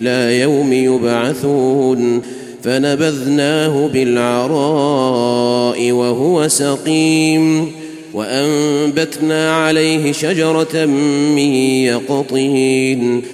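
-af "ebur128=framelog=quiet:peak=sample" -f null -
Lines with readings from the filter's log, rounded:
Integrated loudness:
  I:         -14.0 LUFS
  Threshold: -24.1 LUFS
Loudness range:
  LRA:         1.1 LU
  Threshold: -34.2 LUFS
  LRA low:   -14.8 LUFS
  LRA high:  -13.6 LUFS
Sample peak:
  Peak:       -2.2 dBFS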